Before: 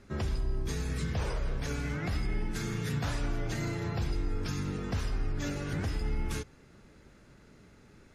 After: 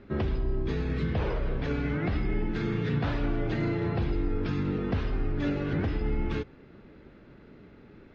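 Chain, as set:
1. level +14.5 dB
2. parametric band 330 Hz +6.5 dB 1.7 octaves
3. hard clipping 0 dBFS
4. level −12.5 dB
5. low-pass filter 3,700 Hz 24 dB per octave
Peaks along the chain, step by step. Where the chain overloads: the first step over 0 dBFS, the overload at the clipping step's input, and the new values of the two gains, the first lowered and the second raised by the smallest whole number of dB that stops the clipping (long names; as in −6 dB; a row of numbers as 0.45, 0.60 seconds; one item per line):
−7.0, −4.0, −4.0, −16.5, −17.0 dBFS
no step passes full scale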